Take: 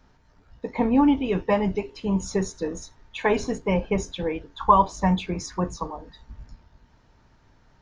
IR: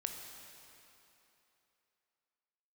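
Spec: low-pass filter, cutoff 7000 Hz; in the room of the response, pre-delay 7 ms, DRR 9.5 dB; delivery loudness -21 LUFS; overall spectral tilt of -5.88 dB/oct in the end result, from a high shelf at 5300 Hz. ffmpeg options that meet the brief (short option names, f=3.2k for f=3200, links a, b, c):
-filter_complex "[0:a]lowpass=7k,highshelf=f=5.3k:g=4,asplit=2[a][b];[1:a]atrim=start_sample=2205,adelay=7[c];[b][c]afir=irnorm=-1:irlink=0,volume=-9dB[d];[a][d]amix=inputs=2:normalize=0,volume=3dB"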